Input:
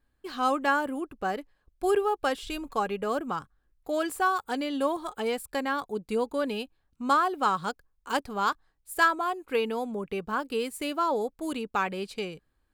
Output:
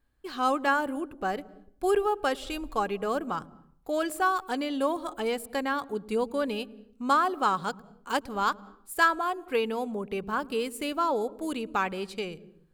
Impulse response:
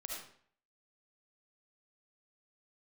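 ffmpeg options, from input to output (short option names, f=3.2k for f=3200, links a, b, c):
-filter_complex "[0:a]asplit=2[a][b];[b]tiltshelf=f=680:g=8[c];[1:a]atrim=start_sample=2205,lowshelf=f=220:g=11.5,adelay=108[d];[c][d]afir=irnorm=-1:irlink=0,volume=-20.5dB[e];[a][e]amix=inputs=2:normalize=0"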